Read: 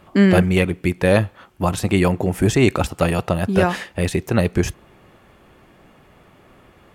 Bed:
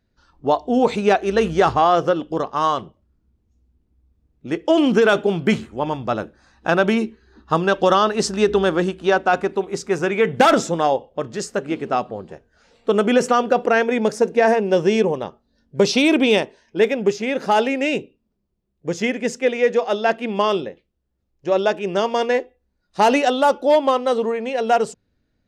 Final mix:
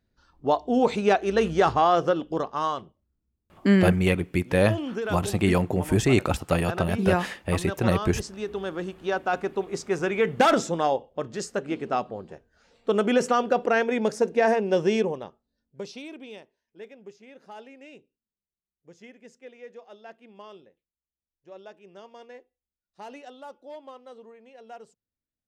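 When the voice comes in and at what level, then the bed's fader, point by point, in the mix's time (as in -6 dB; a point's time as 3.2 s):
3.50 s, -5.0 dB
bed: 2.36 s -4.5 dB
3.35 s -15.5 dB
8.45 s -15.5 dB
9.66 s -5.5 dB
14.95 s -5.5 dB
16.17 s -26.5 dB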